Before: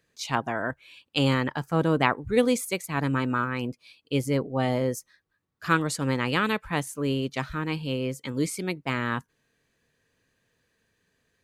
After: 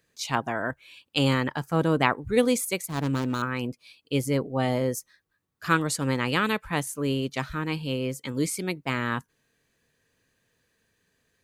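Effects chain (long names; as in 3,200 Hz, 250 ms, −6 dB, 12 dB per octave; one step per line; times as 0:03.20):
0:02.89–0:03.42: running median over 25 samples
high-shelf EQ 7,200 Hz +5.5 dB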